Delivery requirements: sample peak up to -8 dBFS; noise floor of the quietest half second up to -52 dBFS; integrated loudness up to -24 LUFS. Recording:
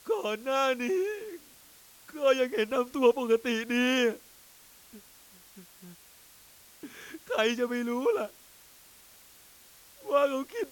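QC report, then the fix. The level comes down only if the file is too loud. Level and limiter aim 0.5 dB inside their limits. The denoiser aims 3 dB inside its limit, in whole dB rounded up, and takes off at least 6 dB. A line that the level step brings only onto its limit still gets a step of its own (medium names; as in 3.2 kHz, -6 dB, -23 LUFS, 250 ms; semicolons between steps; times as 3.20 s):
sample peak -10.5 dBFS: pass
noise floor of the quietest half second -56 dBFS: pass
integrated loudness -28.5 LUFS: pass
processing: none needed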